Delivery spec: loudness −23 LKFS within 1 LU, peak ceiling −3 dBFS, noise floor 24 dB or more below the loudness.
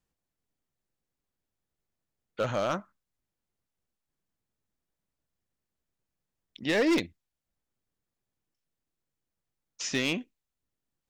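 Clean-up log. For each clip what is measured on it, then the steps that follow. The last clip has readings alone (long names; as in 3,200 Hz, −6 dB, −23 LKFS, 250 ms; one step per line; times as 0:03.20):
share of clipped samples 0.4%; peaks flattened at −20.5 dBFS; integrated loudness −29.5 LKFS; sample peak −20.5 dBFS; target loudness −23.0 LKFS
→ clipped peaks rebuilt −20.5 dBFS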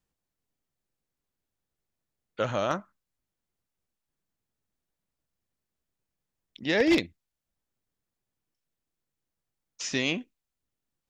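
share of clipped samples 0.0%; integrated loudness −28.0 LKFS; sample peak −11.5 dBFS; target loudness −23.0 LKFS
→ level +5 dB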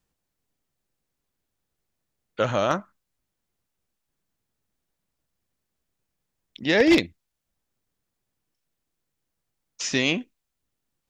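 integrated loudness −23.0 LKFS; sample peak −6.5 dBFS; background noise floor −82 dBFS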